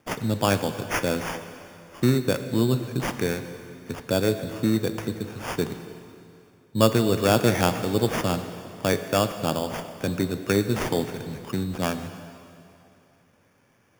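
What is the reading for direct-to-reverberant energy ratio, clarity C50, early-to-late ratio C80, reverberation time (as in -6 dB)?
8.5 dB, 10.0 dB, 10.5 dB, 2.6 s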